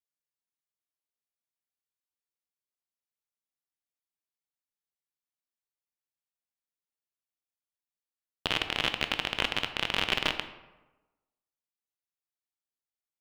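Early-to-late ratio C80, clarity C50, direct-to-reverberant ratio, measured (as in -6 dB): 12.5 dB, 10.0 dB, 8.0 dB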